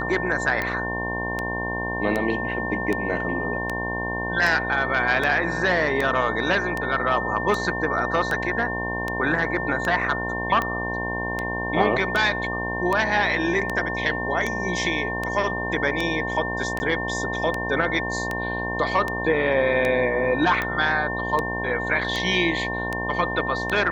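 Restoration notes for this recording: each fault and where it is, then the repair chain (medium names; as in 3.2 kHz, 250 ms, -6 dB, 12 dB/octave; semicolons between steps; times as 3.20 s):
buzz 60 Hz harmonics 18 -30 dBFS
tick 78 rpm -12 dBFS
whine 1.8 kHz -28 dBFS
16.79–16.80 s: dropout 10 ms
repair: de-click; de-hum 60 Hz, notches 18; band-stop 1.8 kHz, Q 30; interpolate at 16.79 s, 10 ms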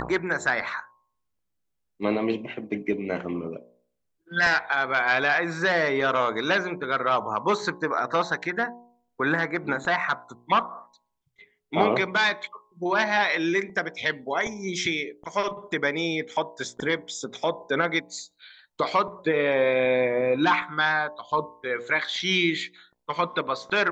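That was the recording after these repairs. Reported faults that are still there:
nothing left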